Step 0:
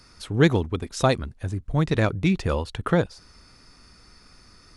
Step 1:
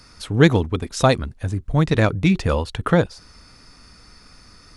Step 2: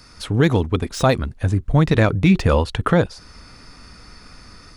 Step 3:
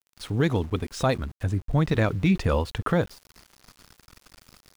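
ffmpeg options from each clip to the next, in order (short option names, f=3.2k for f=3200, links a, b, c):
-af "bandreject=f=370:w=12,volume=4.5dB"
-filter_complex "[0:a]acrossover=split=3600[a][b];[a]dynaudnorm=f=130:g=3:m=4dB[c];[b]asoftclip=type=hard:threshold=-30dB[d];[c][d]amix=inputs=2:normalize=0,alimiter=level_in=6dB:limit=-1dB:release=50:level=0:latency=1,volume=-4.5dB"
-af "aeval=exprs='val(0)*gte(abs(val(0)),0.015)':c=same,volume=-7dB"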